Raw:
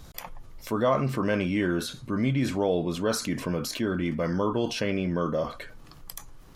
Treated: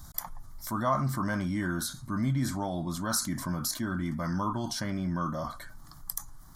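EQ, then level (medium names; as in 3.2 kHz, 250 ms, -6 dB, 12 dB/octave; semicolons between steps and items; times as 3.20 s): treble shelf 5.4 kHz +8 dB; static phaser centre 1.1 kHz, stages 4; 0.0 dB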